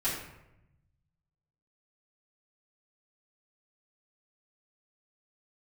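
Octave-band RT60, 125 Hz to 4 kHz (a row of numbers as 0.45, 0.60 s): 1.8, 1.3, 0.95, 0.85, 0.80, 0.55 s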